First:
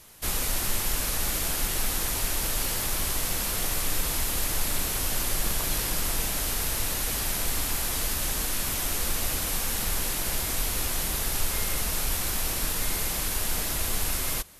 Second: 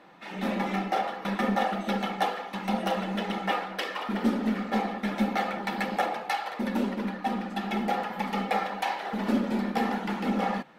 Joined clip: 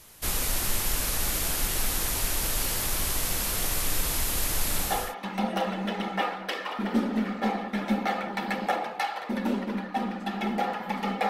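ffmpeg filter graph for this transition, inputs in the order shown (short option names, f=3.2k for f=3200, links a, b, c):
-filter_complex "[0:a]apad=whole_dur=11.29,atrim=end=11.29,atrim=end=5.15,asetpts=PTS-STARTPTS[a];[1:a]atrim=start=1.99:end=8.59,asetpts=PTS-STARTPTS[b];[a][b]acrossfade=d=0.46:c1=qsin:c2=qsin"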